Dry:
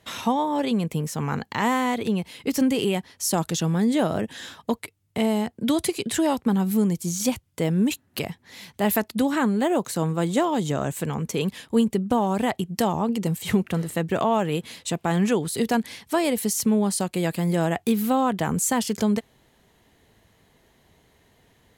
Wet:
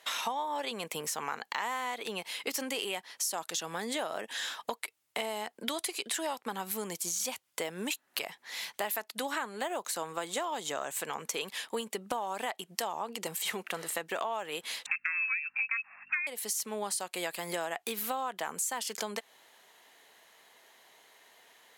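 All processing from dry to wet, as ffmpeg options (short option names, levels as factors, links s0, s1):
-filter_complex "[0:a]asettb=1/sr,asplit=3[s0][s1][s2];[s0]atrim=end=14.864[s3];[s1]atrim=start=14.86:end=16.27,asetpts=PTS-STARTPTS,afade=t=in:d=0.004:c=qsin,afade=t=out:st=1.406:d=0.004:c=qsin,lowpass=f=2400:t=q:w=0.5098,lowpass=f=2400:t=q:w=0.6013,lowpass=f=2400:t=q:w=0.9,lowpass=f=2400:t=q:w=2.563,afreqshift=-2800,highpass=f=1500:t=q:w=3.1,aeval=exprs='val(0)+0.00562*(sin(2*PI*50*n/s)+sin(2*PI*2*50*n/s)/2+sin(2*PI*3*50*n/s)/3+sin(2*PI*4*50*n/s)/4+sin(2*PI*5*50*n/s)/5)':c=same[s4];[s2]atrim=start=16.266[s5];[s3][s4]acrossfade=d=0.004:c1=hsin:c2=qsin[s6];[s6][s5]acrossfade=d=0.004:c1=qsin:c2=hsin,highpass=740,acompressor=threshold=0.0158:ratio=6,volume=1.68"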